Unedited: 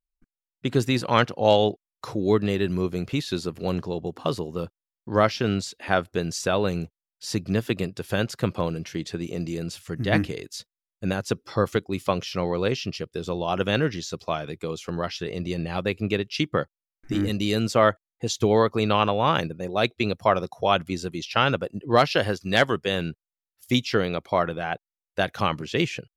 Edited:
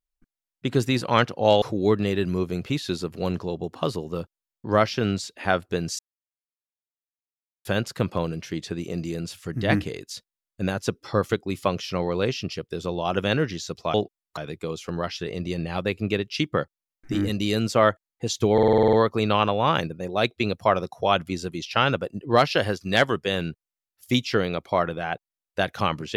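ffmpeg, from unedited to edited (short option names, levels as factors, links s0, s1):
-filter_complex "[0:a]asplit=14[s0][s1][s2][s3][s4][s5][s6][s7][s8][s9][s10][s11][s12][s13];[s0]atrim=end=1.622[s14];[s1]atrim=start=2.048:end=6.42,asetpts=PTS-STARTPTS,afade=t=out:st=4.368:d=0.004:c=hsin[s15];[s2]atrim=start=6.42:end=8.08,asetpts=PTS-STARTPTS,volume=0[s16];[s3]atrim=start=8.08:end=14.372,asetpts=PTS-STARTPTS,afade=t=in:d=0.004:c=hsin[s17];[s4]atrim=start=1.618:end=2.052[s18];[s5]atrim=start=14.368:end=18.582[s19];[s6]atrim=start=18.528:end=18.582[s20];[s7]atrim=start=18.528:end=18.582[s21];[s8]atrim=start=18.528:end=18.582[s22];[s9]atrim=start=18.528:end=18.582[s23];[s10]atrim=start=18.528:end=18.582[s24];[s11]atrim=start=18.528:end=18.582[s25];[s12]atrim=start=18.528:end=18.582[s26];[s13]atrim=start=18.528[s27];[s15][s16][s17]concat=n=3:v=0:a=1[s28];[s14][s28]acrossfade=d=0.004:c1=hsin:c2=hsin[s29];[s29][s18]acrossfade=d=0.004:c1=hsin:c2=hsin[s30];[s30][s19]acrossfade=d=0.004:c1=hsin:c2=hsin[s31];[s31][s20]acrossfade=d=0.004:c1=hsin:c2=hsin[s32];[s32][s21]acrossfade=d=0.004:c1=hsin:c2=hsin[s33];[s33][s22]acrossfade=d=0.004:c1=hsin:c2=hsin[s34];[s34][s23]acrossfade=d=0.004:c1=hsin:c2=hsin[s35];[s35][s24]acrossfade=d=0.004:c1=hsin:c2=hsin[s36];[s36][s25]acrossfade=d=0.004:c1=hsin:c2=hsin[s37];[s37][s26]acrossfade=d=0.004:c1=hsin:c2=hsin[s38];[s38][s27]acrossfade=d=0.004:c1=hsin:c2=hsin"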